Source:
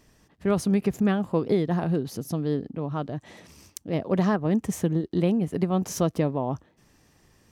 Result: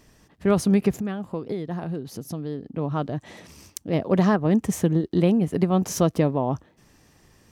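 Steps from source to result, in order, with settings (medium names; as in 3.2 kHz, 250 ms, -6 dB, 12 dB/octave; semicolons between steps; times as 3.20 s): 0.91–2.76 s: compression 2:1, threshold -38 dBFS, peak gain reduction 11 dB; trim +3.5 dB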